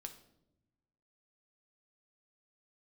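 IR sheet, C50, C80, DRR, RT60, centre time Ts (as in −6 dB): 11.5 dB, 15.0 dB, 5.5 dB, 0.90 s, 10 ms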